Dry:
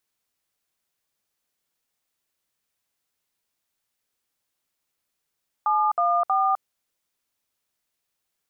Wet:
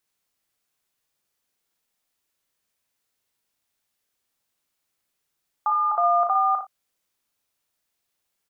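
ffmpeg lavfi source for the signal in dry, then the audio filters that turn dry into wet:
-f lavfi -i "aevalsrc='0.0891*clip(min(mod(t,0.318),0.256-mod(t,0.318))/0.002,0,1)*(eq(floor(t/0.318),0)*(sin(2*PI*852*mod(t,0.318))+sin(2*PI*1209*mod(t,0.318)))+eq(floor(t/0.318),1)*(sin(2*PI*697*mod(t,0.318))+sin(2*PI*1209*mod(t,0.318)))+eq(floor(t/0.318),2)*(sin(2*PI*770*mod(t,0.318))+sin(2*PI*1209*mod(t,0.318))))':d=0.954:s=44100"
-filter_complex "[0:a]asplit=2[a][b];[b]adelay=37,volume=-8.5dB[c];[a][c]amix=inputs=2:normalize=0,asplit=2[d][e];[e]aecho=0:1:57|79:0.473|0.158[f];[d][f]amix=inputs=2:normalize=0"

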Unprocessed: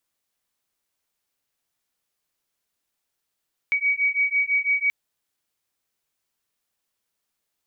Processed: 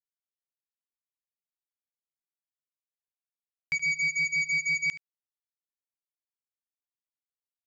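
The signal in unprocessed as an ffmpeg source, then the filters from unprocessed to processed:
-f lavfi -i "aevalsrc='0.075*(sin(2*PI*2260*t)+sin(2*PI*2266*t))':d=1.18:s=44100"
-af "aresample=16000,acrusher=bits=3:mix=0:aa=0.5,aresample=44100,aecho=1:1:74:0.126,alimiter=limit=-22dB:level=0:latency=1:release=183"

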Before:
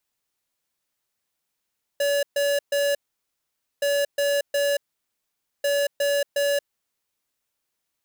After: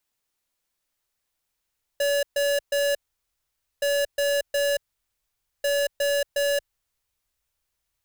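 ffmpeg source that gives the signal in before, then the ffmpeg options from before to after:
-f lavfi -i "aevalsrc='0.0794*(2*lt(mod(569*t,1),0.5)-1)*clip(min(mod(mod(t,1.82),0.36),0.23-mod(mod(t,1.82),0.36))/0.005,0,1)*lt(mod(t,1.82),1.08)':d=5.46:s=44100"
-af "asubboost=boost=10:cutoff=72"

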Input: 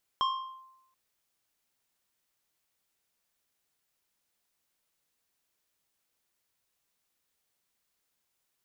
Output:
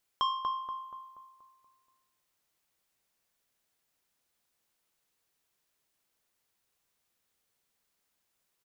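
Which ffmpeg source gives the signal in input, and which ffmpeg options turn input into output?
-f lavfi -i "aevalsrc='0.075*pow(10,-3*t/0.89)*sin(2*PI*1050*t+0.88*clip(1-t/0.42,0,1)*sin(2*PI*2.05*1050*t))':d=0.73:s=44100"
-filter_complex "[0:a]bandreject=f=60:t=h:w=6,bandreject=f=120:t=h:w=6,bandreject=f=180:t=h:w=6,bandreject=f=240:t=h:w=6,bandreject=f=300:t=h:w=6,asplit=2[a][b];[b]adelay=239,lowpass=f=1.7k:p=1,volume=-3dB,asplit=2[c][d];[d]adelay=239,lowpass=f=1.7k:p=1,volume=0.51,asplit=2[e][f];[f]adelay=239,lowpass=f=1.7k:p=1,volume=0.51,asplit=2[g][h];[h]adelay=239,lowpass=f=1.7k:p=1,volume=0.51,asplit=2[i][j];[j]adelay=239,lowpass=f=1.7k:p=1,volume=0.51,asplit=2[k][l];[l]adelay=239,lowpass=f=1.7k:p=1,volume=0.51,asplit=2[m][n];[n]adelay=239,lowpass=f=1.7k:p=1,volume=0.51[o];[c][e][g][i][k][m][o]amix=inputs=7:normalize=0[p];[a][p]amix=inputs=2:normalize=0"

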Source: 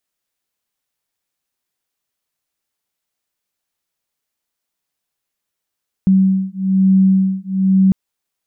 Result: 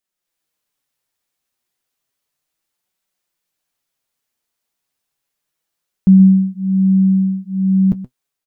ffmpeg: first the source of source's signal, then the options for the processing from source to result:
-f lavfi -i "aevalsrc='0.211*(sin(2*PI*190*t)+sin(2*PI*191.1*t))':d=1.85:s=44100"
-af "dynaudnorm=f=110:g=5:m=6dB,flanger=delay=5.1:depth=3.8:regen=52:speed=0.33:shape=triangular,aecho=1:1:126:0.2"

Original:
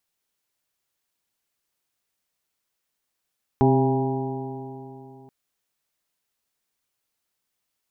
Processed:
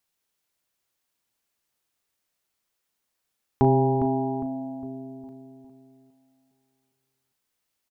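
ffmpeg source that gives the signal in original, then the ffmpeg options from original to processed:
-f lavfi -i "aevalsrc='0.119*pow(10,-3*t/3.13)*sin(2*PI*131.12*t)+0.119*pow(10,-3*t/3.13)*sin(2*PI*262.99*t)+0.119*pow(10,-3*t/3.13)*sin(2*PI*396.35*t)+0.0126*pow(10,-3*t/3.13)*sin(2*PI*531.91*t)+0.0335*pow(10,-3*t/3.13)*sin(2*PI*670.38*t)+0.0841*pow(10,-3*t/3.13)*sin(2*PI*812.44*t)+0.0282*pow(10,-3*t/3.13)*sin(2*PI*958.74*t)':d=1.68:s=44100"
-filter_complex "[0:a]asplit=2[a][b];[b]adelay=36,volume=-12.5dB[c];[a][c]amix=inputs=2:normalize=0,asplit=2[d][e];[e]adelay=407,lowpass=f=1.4k:p=1,volume=-7dB,asplit=2[f][g];[g]adelay=407,lowpass=f=1.4k:p=1,volume=0.42,asplit=2[h][i];[i]adelay=407,lowpass=f=1.4k:p=1,volume=0.42,asplit=2[j][k];[k]adelay=407,lowpass=f=1.4k:p=1,volume=0.42,asplit=2[l][m];[m]adelay=407,lowpass=f=1.4k:p=1,volume=0.42[n];[f][h][j][l][n]amix=inputs=5:normalize=0[o];[d][o]amix=inputs=2:normalize=0"

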